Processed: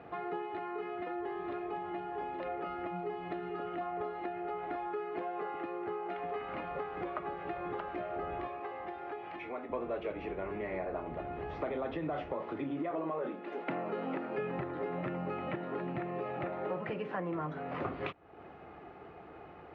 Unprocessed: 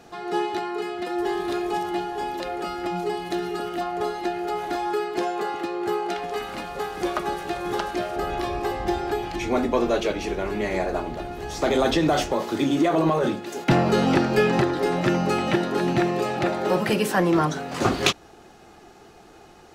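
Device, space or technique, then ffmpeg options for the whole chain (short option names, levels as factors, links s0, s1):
bass amplifier: -filter_complex "[0:a]asettb=1/sr,asplit=3[s0][s1][s2];[s0]atrim=end=12.914[s3];[s1]atrim=start=12.91:end=14.38,asetpts=PTS-STARTPTS,afade=t=in:d=0.004:c=qsin,afade=t=out:st=1.466:d=0.004:c=qsin,highpass=f=200:w=0.5412,highpass=f=200:w=1.3066[s4];[s2]atrim=start=14.376[s5];[s3][s4]acrossfade=d=0.004:c1=hsin:c2=qsin[s6];[s6][s5]acrossfade=d=0.004:c1=qsin:c2=hsin,acompressor=threshold=0.0178:ratio=4,highpass=77,equalizer=f=120:t=q:w=4:g=-4,equalizer=f=220:t=q:w=4:g=-8,equalizer=f=360:t=q:w=4:g=-5,equalizer=f=830:t=q:w=4:g=-4,equalizer=f=1600:t=q:w=4:g=-6,lowpass=f=2200:w=0.5412,lowpass=f=2200:w=1.3066,asettb=1/sr,asplit=3[s7][s8][s9];[s7]atrim=end=8.474[s10];[s8]atrim=start=8.47:end=9.7,asetpts=PTS-STARTPTS,afade=t=in:d=0.004:c=qsin,afade=t=out:st=1.226:d=0.004:c=qsin,highpass=f=570:p=1[s11];[s9]atrim=start=9.696[s12];[s10][s11]acrossfade=d=0.004:c1=hsin:c2=qsin[s13];[s13][s12]acrossfade=d=0.004:c1=qsin:c2=hsin,volume=1.19"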